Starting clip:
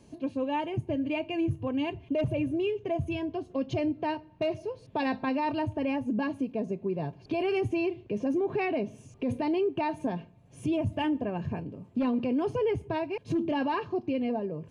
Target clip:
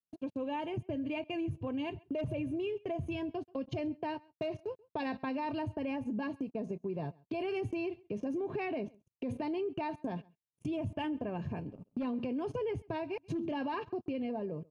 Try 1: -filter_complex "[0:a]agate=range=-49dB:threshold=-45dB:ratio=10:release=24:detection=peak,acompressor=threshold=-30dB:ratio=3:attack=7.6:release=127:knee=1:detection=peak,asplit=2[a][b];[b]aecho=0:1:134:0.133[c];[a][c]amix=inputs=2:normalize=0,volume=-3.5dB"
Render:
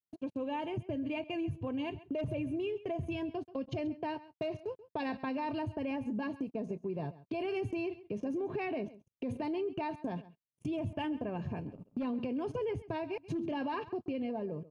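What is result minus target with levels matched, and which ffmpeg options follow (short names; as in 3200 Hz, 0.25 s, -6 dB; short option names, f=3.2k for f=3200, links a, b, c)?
echo-to-direct +8 dB
-filter_complex "[0:a]agate=range=-49dB:threshold=-45dB:ratio=10:release=24:detection=peak,acompressor=threshold=-30dB:ratio=3:attack=7.6:release=127:knee=1:detection=peak,asplit=2[a][b];[b]aecho=0:1:134:0.0531[c];[a][c]amix=inputs=2:normalize=0,volume=-3.5dB"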